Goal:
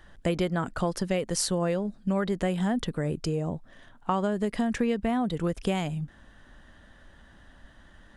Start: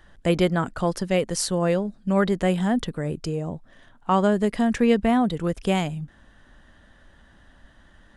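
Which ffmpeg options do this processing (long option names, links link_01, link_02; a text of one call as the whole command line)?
ffmpeg -i in.wav -af "acompressor=threshold=-23dB:ratio=6" out.wav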